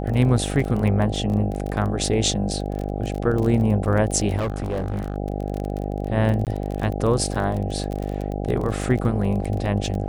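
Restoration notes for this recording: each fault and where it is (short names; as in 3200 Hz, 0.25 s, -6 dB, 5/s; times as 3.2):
buzz 50 Hz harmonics 16 -27 dBFS
crackle 26/s -26 dBFS
4.38–5.16 clipped -21 dBFS
6.45–6.47 gap 18 ms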